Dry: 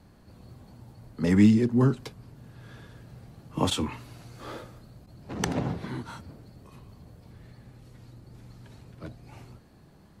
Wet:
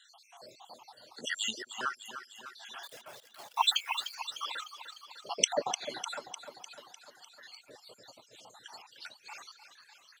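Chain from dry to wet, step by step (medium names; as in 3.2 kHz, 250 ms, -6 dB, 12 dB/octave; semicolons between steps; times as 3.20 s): random holes in the spectrogram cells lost 68%; high-order bell 4.5 kHz +10.5 dB; in parallel at +0.5 dB: compression, threshold -40 dBFS, peak gain reduction 21 dB; 2.83–4.15 s: on the sum: word length cut 8-bit, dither none; LFO high-pass saw up 0.39 Hz 510–1800 Hz; on a send: feedback delay 301 ms, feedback 59%, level -9 dB; on the sum: reverb removal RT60 1.3 s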